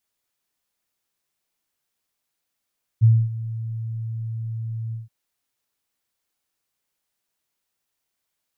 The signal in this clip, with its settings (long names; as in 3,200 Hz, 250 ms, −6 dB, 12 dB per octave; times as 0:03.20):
note with an ADSR envelope sine 113 Hz, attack 29 ms, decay 251 ms, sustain −17 dB, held 1.92 s, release 154 ms −9 dBFS